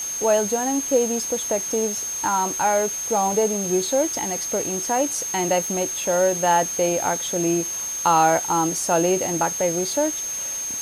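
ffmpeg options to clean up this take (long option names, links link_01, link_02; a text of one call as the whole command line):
ffmpeg -i in.wav -af "bandreject=frequency=6400:width=30,afwtdn=0.014" out.wav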